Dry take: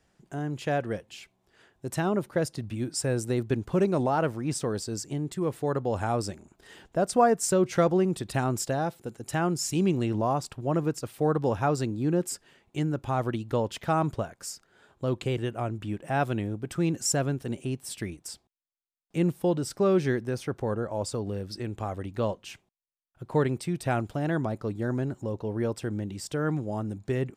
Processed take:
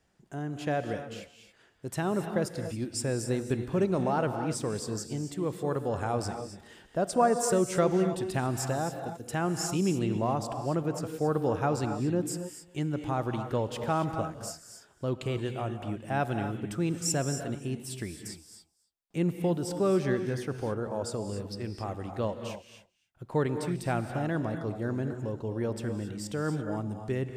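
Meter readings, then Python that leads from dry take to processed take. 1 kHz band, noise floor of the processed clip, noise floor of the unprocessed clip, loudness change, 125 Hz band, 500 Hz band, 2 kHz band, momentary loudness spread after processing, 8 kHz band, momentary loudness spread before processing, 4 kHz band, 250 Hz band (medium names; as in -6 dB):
-2.0 dB, -63 dBFS, -73 dBFS, -2.5 dB, -2.0 dB, -2.0 dB, -2.5 dB, 11 LU, -2.0 dB, 11 LU, -2.0 dB, -2.0 dB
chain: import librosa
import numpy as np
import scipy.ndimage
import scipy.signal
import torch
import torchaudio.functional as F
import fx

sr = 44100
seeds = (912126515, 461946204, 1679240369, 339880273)

p1 = x + fx.echo_single(x, sr, ms=273, db=-21.0, dry=0)
p2 = fx.rev_gated(p1, sr, seeds[0], gate_ms=300, shape='rising', drr_db=7.0)
y = F.gain(torch.from_numpy(p2), -3.0).numpy()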